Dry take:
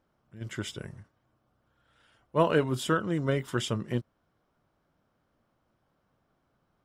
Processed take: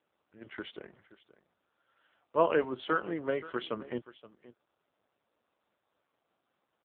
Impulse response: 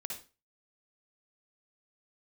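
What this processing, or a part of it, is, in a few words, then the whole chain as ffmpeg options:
satellite phone: -filter_complex "[0:a]asplit=3[s0][s1][s2];[s0]afade=t=out:st=2.56:d=0.02[s3];[s1]lowshelf=f=150:g=-5.5,afade=t=in:st=2.56:d=0.02,afade=t=out:st=3.62:d=0.02[s4];[s2]afade=t=in:st=3.62:d=0.02[s5];[s3][s4][s5]amix=inputs=3:normalize=0,highpass=330,lowpass=3300,aecho=1:1:525:0.126" -ar 8000 -c:a libopencore_amrnb -b:a 5900

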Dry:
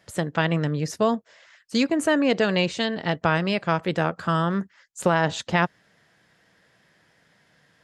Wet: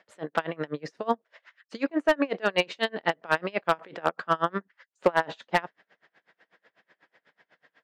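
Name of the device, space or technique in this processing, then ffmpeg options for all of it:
helicopter radio: -af "highpass=370,lowpass=2900,aeval=exprs='val(0)*pow(10,-30*(0.5-0.5*cos(2*PI*8.1*n/s))/20)':c=same,asoftclip=type=hard:threshold=0.15,volume=1.88"

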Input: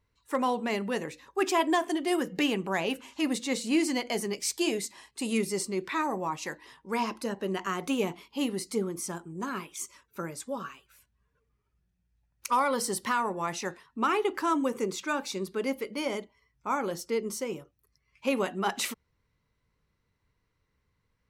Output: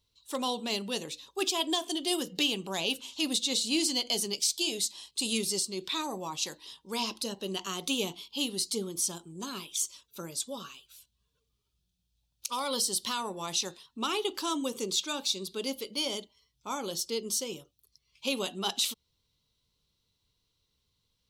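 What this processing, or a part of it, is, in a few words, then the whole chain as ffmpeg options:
over-bright horn tweeter: -af "highshelf=f=2600:t=q:w=3:g=10.5,alimiter=limit=0.237:level=0:latency=1:release=248,volume=0.596"

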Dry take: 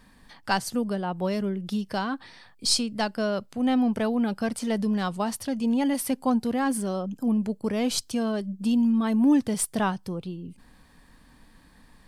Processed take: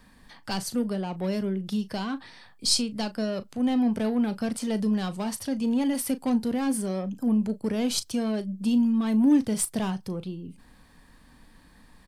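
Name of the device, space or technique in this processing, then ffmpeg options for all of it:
one-band saturation: -filter_complex "[0:a]acrossover=split=460|2900[s0][s1][s2];[s1]asoftclip=type=tanh:threshold=0.02[s3];[s0][s3][s2]amix=inputs=3:normalize=0,asplit=2[s4][s5];[s5]adelay=37,volume=0.2[s6];[s4][s6]amix=inputs=2:normalize=0"

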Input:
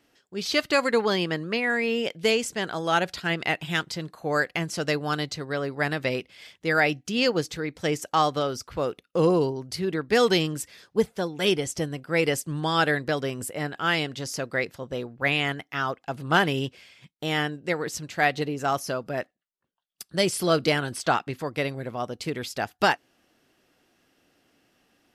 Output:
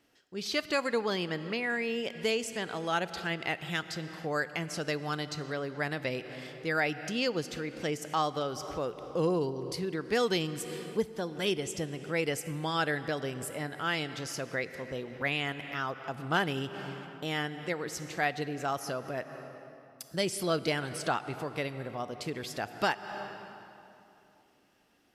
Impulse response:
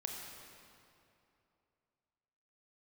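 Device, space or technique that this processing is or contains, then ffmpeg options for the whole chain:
ducked reverb: -filter_complex "[0:a]asplit=3[s0][s1][s2];[1:a]atrim=start_sample=2205[s3];[s1][s3]afir=irnorm=-1:irlink=0[s4];[s2]apad=whole_len=1108754[s5];[s4][s5]sidechaincompress=threshold=0.0158:ratio=5:attack=33:release=185,volume=1[s6];[s0][s6]amix=inputs=2:normalize=0,volume=0.376"

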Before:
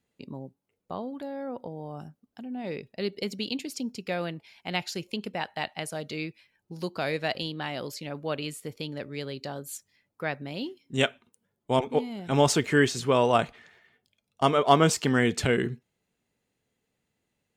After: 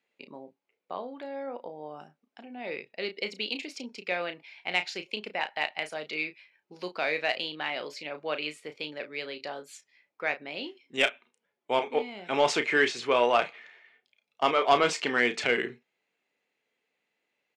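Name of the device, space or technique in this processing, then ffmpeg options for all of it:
intercom: -filter_complex "[0:a]highpass=410,lowpass=4800,equalizer=f=2300:t=o:w=0.56:g=7.5,asoftclip=type=tanh:threshold=0.282,asplit=2[s0][s1];[s1]adelay=33,volume=0.335[s2];[s0][s2]amix=inputs=2:normalize=0"

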